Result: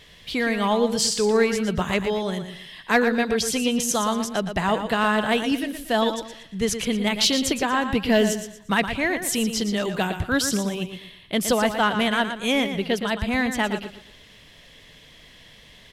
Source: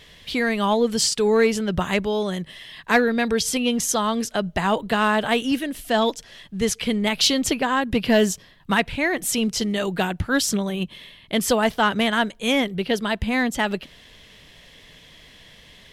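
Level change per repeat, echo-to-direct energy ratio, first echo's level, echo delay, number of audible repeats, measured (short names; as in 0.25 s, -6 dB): -10.0 dB, -8.5 dB, -9.0 dB, 0.117 s, 3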